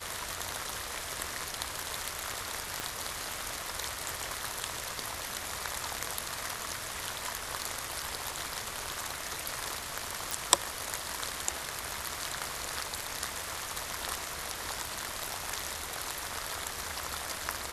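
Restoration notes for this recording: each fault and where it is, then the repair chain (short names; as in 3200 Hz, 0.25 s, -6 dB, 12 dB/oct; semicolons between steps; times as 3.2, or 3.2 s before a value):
2.8 pop -17 dBFS
10.31 pop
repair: de-click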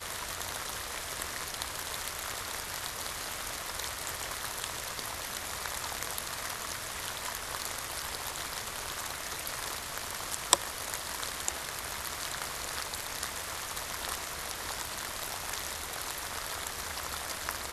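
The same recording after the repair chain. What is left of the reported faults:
2.8 pop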